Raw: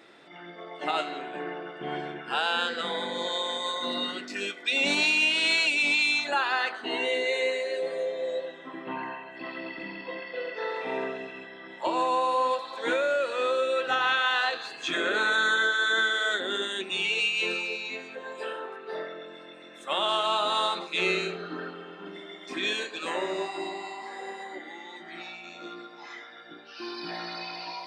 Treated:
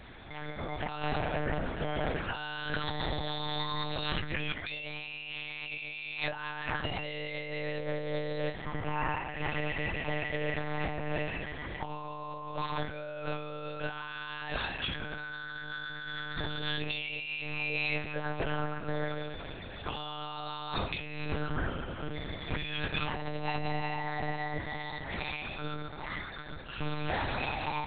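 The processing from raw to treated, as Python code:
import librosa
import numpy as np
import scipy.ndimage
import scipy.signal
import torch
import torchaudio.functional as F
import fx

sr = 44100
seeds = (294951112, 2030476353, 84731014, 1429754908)

y = fx.lpc_monotone(x, sr, seeds[0], pitch_hz=150.0, order=8)
y = fx.over_compress(y, sr, threshold_db=-35.0, ratio=-1.0)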